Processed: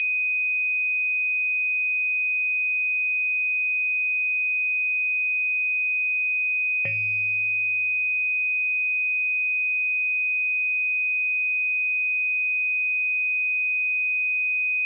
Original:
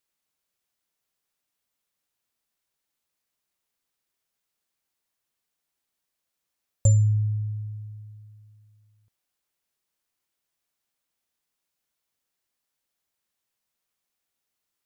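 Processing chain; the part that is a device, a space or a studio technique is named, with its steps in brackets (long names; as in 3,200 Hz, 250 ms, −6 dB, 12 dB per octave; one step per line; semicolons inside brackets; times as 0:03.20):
toy sound module (linearly interpolated sample-rate reduction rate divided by 6×; switching amplifier with a slow clock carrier 2,500 Hz; loudspeaker in its box 560–4,100 Hz, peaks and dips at 570 Hz −10 dB, 930 Hz −6 dB, 1,400 Hz +4 dB, 2,000 Hz +8 dB, 3,200 Hz +8 dB)
level +6.5 dB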